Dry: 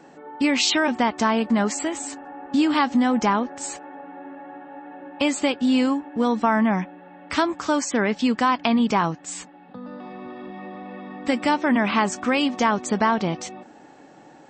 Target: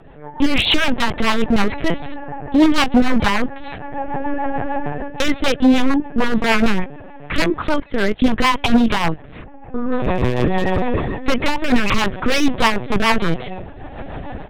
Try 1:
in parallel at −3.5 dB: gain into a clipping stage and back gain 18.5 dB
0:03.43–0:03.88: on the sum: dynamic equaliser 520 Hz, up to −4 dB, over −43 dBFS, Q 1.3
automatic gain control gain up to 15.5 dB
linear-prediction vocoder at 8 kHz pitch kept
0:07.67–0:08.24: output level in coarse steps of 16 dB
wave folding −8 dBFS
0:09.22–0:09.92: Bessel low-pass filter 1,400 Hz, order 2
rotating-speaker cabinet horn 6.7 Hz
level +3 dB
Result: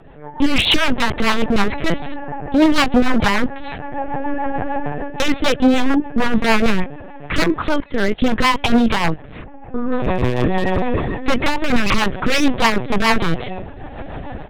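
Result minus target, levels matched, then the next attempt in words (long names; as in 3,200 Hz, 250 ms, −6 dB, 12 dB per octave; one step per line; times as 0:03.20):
gain into a clipping stage and back: distortion +23 dB
in parallel at −3.5 dB: gain into a clipping stage and back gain 10.5 dB
0:03.43–0:03.88: on the sum: dynamic equaliser 520 Hz, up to −4 dB, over −43 dBFS, Q 1.3
automatic gain control gain up to 15.5 dB
linear-prediction vocoder at 8 kHz pitch kept
0:07.67–0:08.24: output level in coarse steps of 16 dB
wave folding −8 dBFS
0:09.22–0:09.92: Bessel low-pass filter 1,400 Hz, order 2
rotating-speaker cabinet horn 6.7 Hz
level +3 dB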